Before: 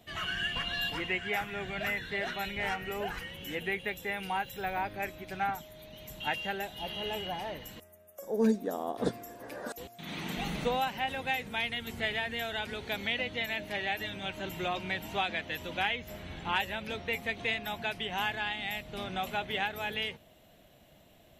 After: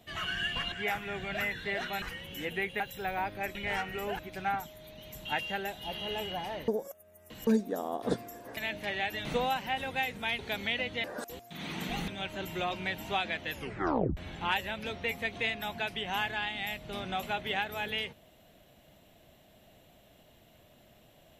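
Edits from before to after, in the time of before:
0:00.72–0:01.18: remove
0:02.48–0:03.12: move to 0:05.14
0:03.90–0:04.39: remove
0:07.63–0:08.42: reverse
0:09.52–0:10.56: swap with 0:13.44–0:14.12
0:11.70–0:12.79: remove
0:15.55: tape stop 0.66 s

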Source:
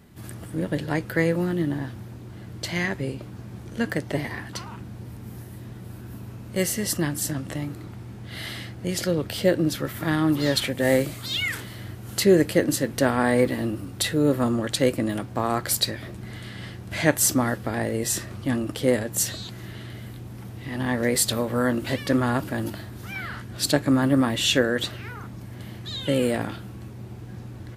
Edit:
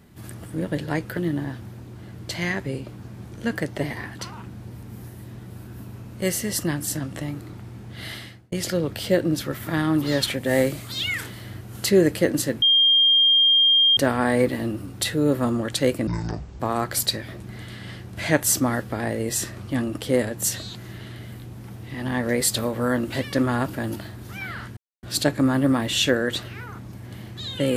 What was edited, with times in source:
0:01.17–0:01.51: remove
0:08.42–0:08.86: fade out
0:12.96: insert tone 3,210 Hz −13.5 dBFS 1.35 s
0:15.06–0:15.34: play speed 53%
0:23.51: splice in silence 0.26 s

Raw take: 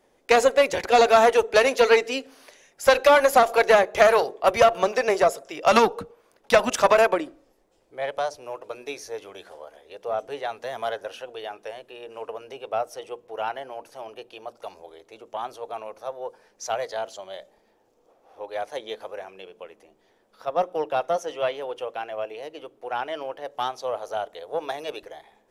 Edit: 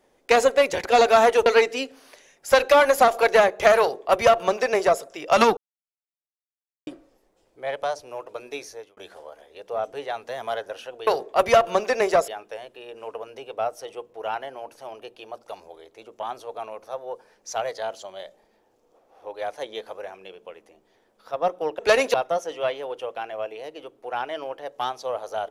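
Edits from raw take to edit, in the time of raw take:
0:01.46–0:01.81: move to 0:20.93
0:04.15–0:05.36: duplicate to 0:11.42
0:05.92–0:07.22: silence
0:08.98–0:09.32: fade out

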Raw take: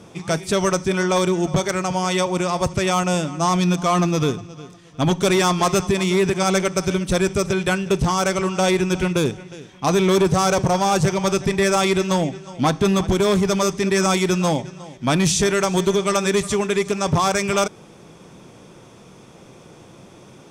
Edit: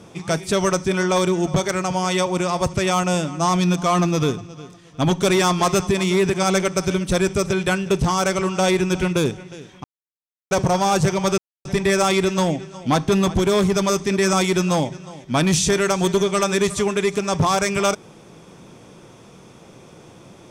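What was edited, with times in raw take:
0:09.84–0:10.51: silence
0:11.38: splice in silence 0.27 s

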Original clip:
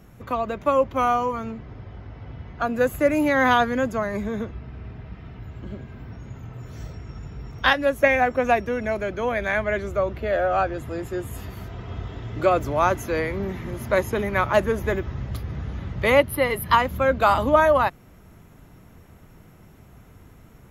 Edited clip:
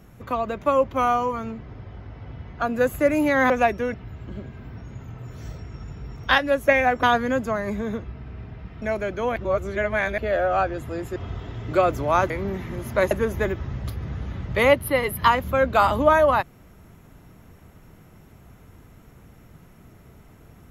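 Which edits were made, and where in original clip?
0:03.50–0:05.29: swap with 0:08.38–0:08.82
0:09.36–0:10.18: reverse
0:11.16–0:11.84: remove
0:12.98–0:13.25: remove
0:14.06–0:14.58: remove

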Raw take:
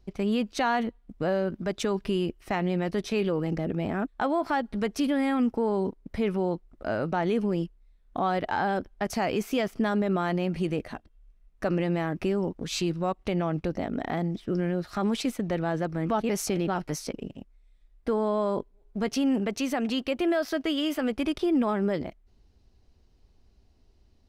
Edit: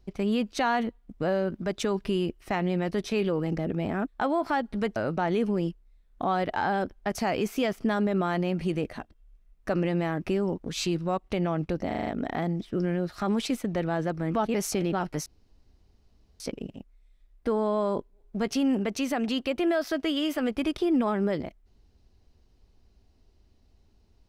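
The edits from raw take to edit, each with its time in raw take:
0:04.96–0:06.91: remove
0:13.82: stutter 0.04 s, 6 plays
0:17.01: splice in room tone 1.14 s

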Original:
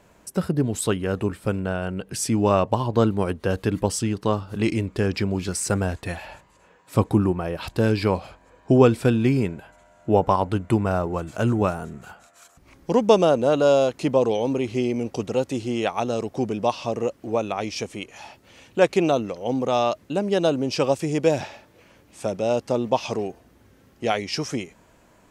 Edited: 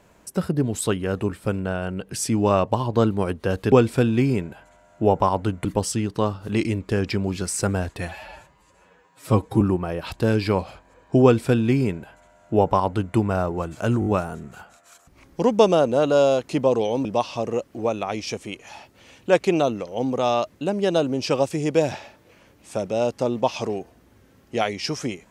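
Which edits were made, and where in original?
0:06.15–0:07.17: time-stretch 1.5×
0:08.79–0:10.72: duplicate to 0:03.72
0:11.56: stutter 0.02 s, 4 plays
0:14.55–0:16.54: remove

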